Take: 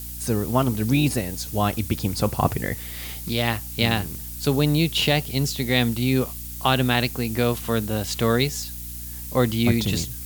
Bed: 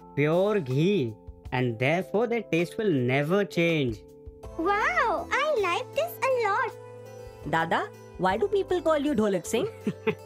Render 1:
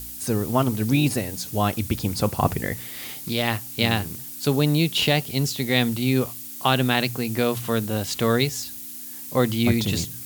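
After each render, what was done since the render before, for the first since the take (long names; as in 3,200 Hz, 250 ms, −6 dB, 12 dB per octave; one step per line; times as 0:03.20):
hum removal 60 Hz, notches 3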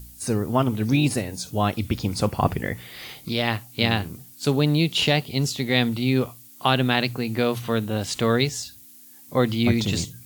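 noise reduction from a noise print 11 dB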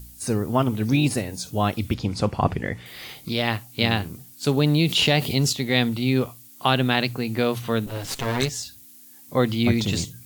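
0:01.94–0:02.86: high-frequency loss of the air 57 metres
0:04.57–0:05.53: envelope flattener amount 50%
0:07.86–0:08.49: lower of the sound and its delayed copy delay 7.4 ms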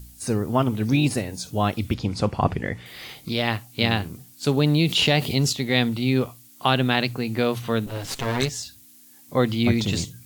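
high-shelf EQ 11,000 Hz −4.5 dB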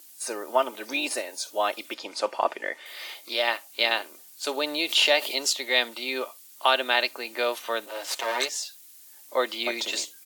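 high-pass filter 470 Hz 24 dB per octave
comb filter 3.3 ms, depth 46%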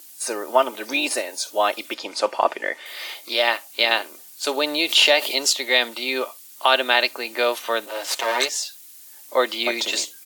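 level +5.5 dB
brickwall limiter −3 dBFS, peak gain reduction 3 dB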